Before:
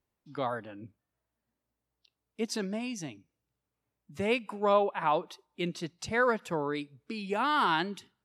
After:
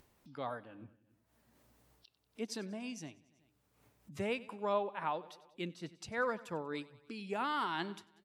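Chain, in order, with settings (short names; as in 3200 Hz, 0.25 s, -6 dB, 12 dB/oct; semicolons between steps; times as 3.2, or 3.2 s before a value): on a send: feedback echo 94 ms, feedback 54%, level -19.5 dB; on the sum: upward compressor, threshold -40 dBFS; noise-modulated level, depth 65%; gain -4.5 dB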